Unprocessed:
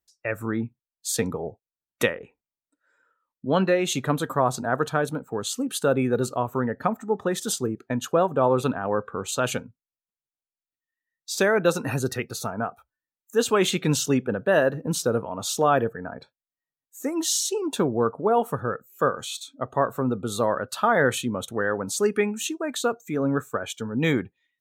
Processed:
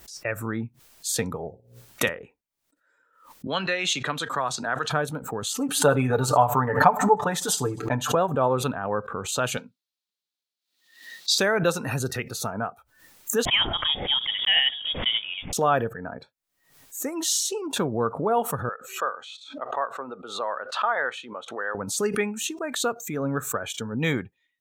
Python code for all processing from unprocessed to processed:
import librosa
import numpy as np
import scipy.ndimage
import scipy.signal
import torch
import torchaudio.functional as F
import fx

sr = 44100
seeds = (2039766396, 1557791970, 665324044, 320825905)

y = fx.chain(x, sr, fx.hum_notches(base_hz=60, count=9),
    fx.room_flutter(wall_m=10.1, rt60_s=0.25), at=(1.47, 2.09))
y = fx.chain(y, sr, fx.bandpass_edges(low_hz=120.0, high_hz=5100.0),
    fx.tilt_shelf(db=-9.5, hz=1400.0),
    fx.band_squash(depth_pct=40), at=(3.47, 4.9))
y = fx.chain(y, sr, fx.peak_eq(hz=890.0, db=10.0, octaves=0.72),
    fx.comb(ms=6.8, depth=0.86),
    fx.echo_feedback(ms=78, feedback_pct=40, wet_db=-24), at=(5.54, 8.15))
y = fx.chain(y, sr, fx.highpass(hz=180.0, slope=24),
    fx.peak_eq(hz=4000.0, db=15.0, octaves=1.0), at=(9.57, 11.38))
y = fx.chain(y, sr, fx.block_float(bits=5),
    fx.low_shelf(hz=440.0, db=-4.5),
    fx.freq_invert(carrier_hz=3500), at=(13.45, 15.53))
y = fx.chain(y, sr, fx.bandpass_edges(low_hz=740.0, high_hz=4000.0),
    fx.high_shelf(hz=2400.0, db=-7.0), at=(18.69, 21.75))
y = fx.dynamic_eq(y, sr, hz=320.0, q=1.0, threshold_db=-34.0, ratio=4.0, max_db=-5)
y = fx.pre_swell(y, sr, db_per_s=97.0)